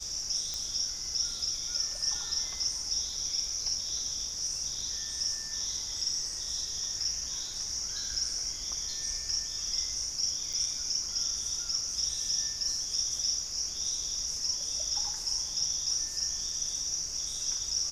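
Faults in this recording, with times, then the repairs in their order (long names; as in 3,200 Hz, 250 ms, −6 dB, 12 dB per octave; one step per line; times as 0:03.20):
0:00.54: click −21 dBFS
0:10.53–0:10.54: drop-out 6.1 ms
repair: click removal
repair the gap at 0:10.53, 6.1 ms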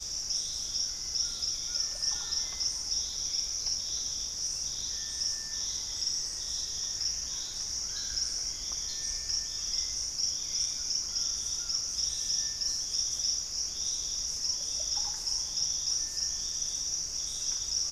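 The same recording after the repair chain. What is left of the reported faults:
none of them is left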